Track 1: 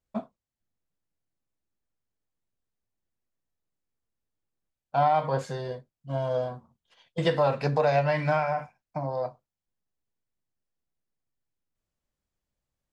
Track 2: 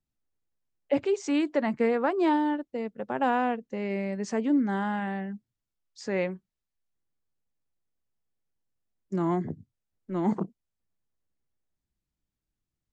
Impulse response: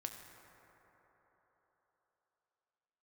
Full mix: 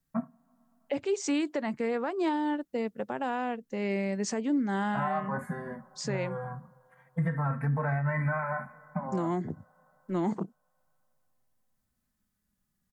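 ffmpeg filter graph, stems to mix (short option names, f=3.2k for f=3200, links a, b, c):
-filter_complex "[0:a]firequalizer=gain_entry='entry(110,0);entry(160,12);entry(230,12);entry(330,-10);entry(1200,5);entry(1900,6);entry(2800,-23);entry(5000,-30);entry(9800,5)':delay=0.05:min_phase=1,asplit=2[a][b];[b]adelay=3.9,afreqshift=-0.28[c];[a][c]amix=inputs=2:normalize=1,volume=2.5dB,asplit=2[d][e];[e]volume=-17dB[f];[1:a]aemphasis=mode=production:type=cd,volume=1.5dB[g];[2:a]atrim=start_sample=2205[h];[f][h]afir=irnorm=-1:irlink=0[i];[d][g][i]amix=inputs=3:normalize=0,alimiter=limit=-21dB:level=0:latency=1:release=424"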